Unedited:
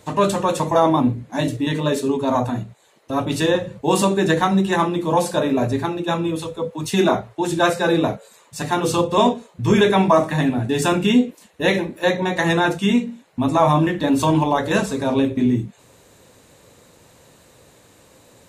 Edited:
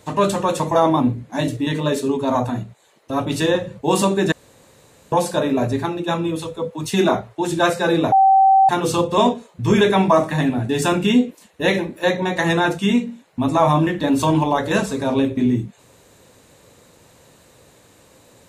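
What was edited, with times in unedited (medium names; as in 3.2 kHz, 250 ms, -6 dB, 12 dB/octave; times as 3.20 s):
4.32–5.12 s: room tone
8.12–8.69 s: bleep 773 Hz -9 dBFS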